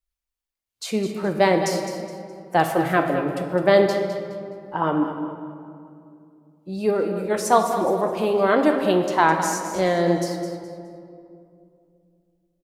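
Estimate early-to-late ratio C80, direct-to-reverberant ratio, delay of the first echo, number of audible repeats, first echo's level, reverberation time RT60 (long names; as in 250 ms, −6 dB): 6.0 dB, 4.5 dB, 209 ms, 3, −10.5 dB, 2.6 s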